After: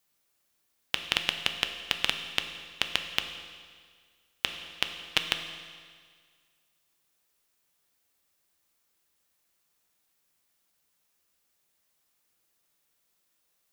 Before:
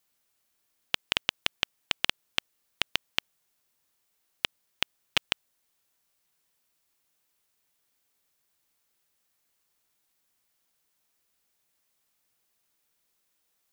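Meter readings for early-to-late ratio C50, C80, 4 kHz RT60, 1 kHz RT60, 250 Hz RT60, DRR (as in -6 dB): 8.0 dB, 9.0 dB, 1.7 s, 1.8 s, 1.8 s, 6.0 dB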